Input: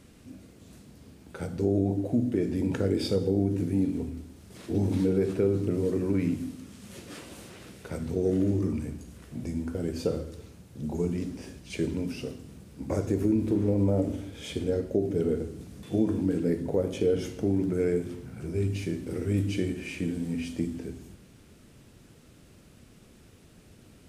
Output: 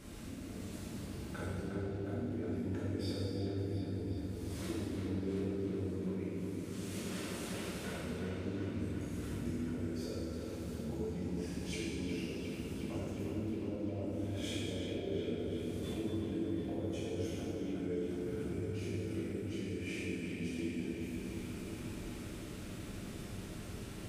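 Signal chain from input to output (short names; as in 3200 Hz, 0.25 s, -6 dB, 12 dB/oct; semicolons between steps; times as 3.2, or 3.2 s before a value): limiter -22.5 dBFS, peak gain reduction 9 dB; compressor 5:1, threshold -47 dBFS, peak gain reduction 18.5 dB; dark delay 0.36 s, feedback 71%, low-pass 3600 Hz, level -5 dB; non-linear reverb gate 0.48 s falling, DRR -7 dB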